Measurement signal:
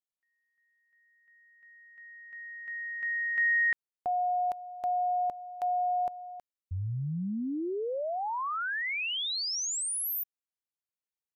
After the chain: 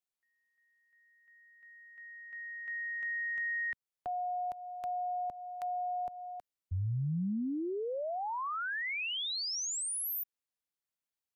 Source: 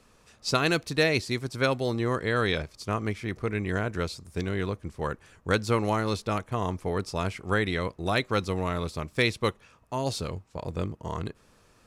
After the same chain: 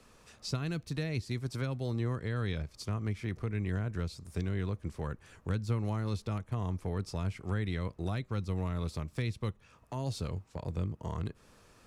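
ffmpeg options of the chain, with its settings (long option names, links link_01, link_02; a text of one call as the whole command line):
ffmpeg -i in.wav -filter_complex "[0:a]acrossover=split=190[link_01][link_02];[link_02]acompressor=threshold=-34dB:ratio=5:attack=0.53:release=483:knee=2.83:detection=peak[link_03];[link_01][link_03]amix=inputs=2:normalize=0" out.wav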